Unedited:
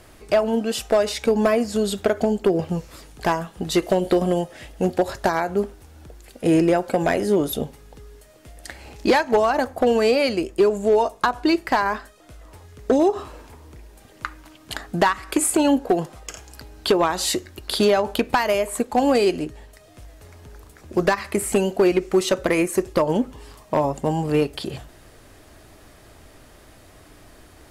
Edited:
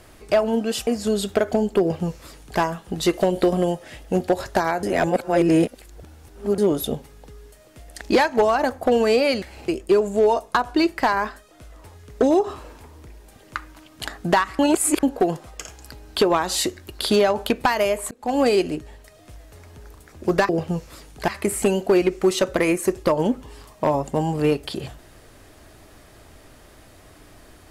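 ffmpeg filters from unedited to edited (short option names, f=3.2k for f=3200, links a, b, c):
-filter_complex "[0:a]asplit=12[a][b][c][d][e][f][g][h][i][j][k][l];[a]atrim=end=0.872[m];[b]atrim=start=1.558:end=5.522[n];[c]atrim=start=5.518:end=7.272,asetpts=PTS-STARTPTS,areverse[o];[d]atrim=start=7.268:end=8.702[p];[e]atrim=start=8.958:end=10.372[q];[f]atrim=start=8.698:end=8.962[r];[g]atrim=start=10.368:end=15.282[s];[h]atrim=start=15.278:end=15.722,asetpts=PTS-STARTPTS,areverse[t];[i]atrim=start=15.718:end=18.8,asetpts=PTS-STARTPTS,afade=t=out:st=3.078:d=0.004:c=hsin[u];[j]atrim=start=18.8:end=21.182,asetpts=PTS-STARTPTS,afade=t=in:d=0.33[v];[k]atrim=start=2.498:end=3.292[w];[l]atrim=start=21.178[x];[m][n]acrossfade=d=0.004:c1=hsin:c2=hsin[y];[y][o]acrossfade=d=0.004:c1=hsin:c2=hsin[z];[z][p]acrossfade=d=0.004:c1=hsin:c2=hsin[aa];[aa][q]acrossfade=d=0.004:c1=hsin:c2=hsin[ab];[ab][r]acrossfade=d=0.004:c1=hsin:c2=hsin[ac];[ac][s]acrossfade=d=0.004:c1=hsin:c2=hsin[ad];[ad][t]acrossfade=d=0.004:c1=hsin:c2=hsin[ae];[u][v]concat=n=2:v=0:a=1[af];[ae][af]acrossfade=d=0.004:c1=hsin:c2=hsin[ag];[ag][w]acrossfade=d=0.004:c1=hsin:c2=hsin[ah];[ah][x]acrossfade=d=0.004:c1=hsin:c2=hsin"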